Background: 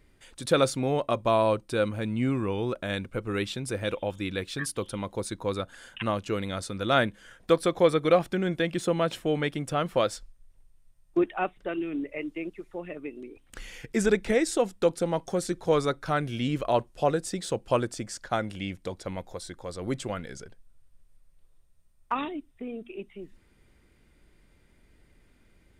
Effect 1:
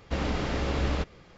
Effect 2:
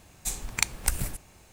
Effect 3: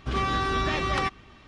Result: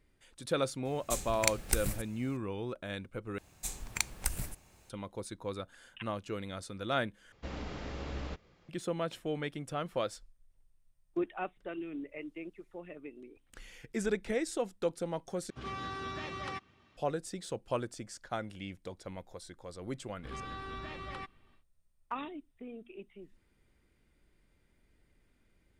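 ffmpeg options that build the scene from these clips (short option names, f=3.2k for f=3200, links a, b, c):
-filter_complex "[2:a]asplit=2[a][b];[3:a]asplit=2[c][d];[0:a]volume=-9dB[e];[a]equalizer=f=1k:w=7.5:g=-13[f];[c]highpass=f=74:w=0.5412,highpass=f=74:w=1.3066[g];[d]equalizer=f=6k:t=o:w=0.47:g=-8.5[h];[e]asplit=4[i][j][k][l];[i]atrim=end=3.384[m];[b]atrim=end=1.52,asetpts=PTS-STARTPTS,volume=-7dB[n];[j]atrim=start=4.896:end=7.324[o];[1:a]atrim=end=1.37,asetpts=PTS-STARTPTS,volume=-12dB[p];[k]atrim=start=8.686:end=15.504[q];[g]atrim=end=1.47,asetpts=PTS-STARTPTS,volume=-13.5dB[r];[l]atrim=start=16.966[s];[f]atrim=end=1.52,asetpts=PTS-STARTPTS,volume=-4dB,afade=t=in:d=0.004:c=hsin,afade=t=out:st=1.516:d=0.004:c=hsin,adelay=850[t];[h]atrim=end=1.47,asetpts=PTS-STARTPTS,volume=-16.5dB,afade=t=in:d=0.1,afade=t=out:st=1.37:d=0.1,adelay=20170[u];[m][n]acrossfade=d=0.004:c1=hsin:c2=hsin[v];[v][o]acrossfade=d=0.004:c1=hsin:c2=hsin[w];[w][p]acrossfade=d=0.004:c1=hsin:c2=hsin[x];[x][q]acrossfade=d=0.004:c1=hsin:c2=hsin[y];[y][r]acrossfade=d=0.004:c1=hsin:c2=hsin[z];[z][s]acrossfade=d=0.004:c1=hsin:c2=hsin[aa];[aa][t][u]amix=inputs=3:normalize=0"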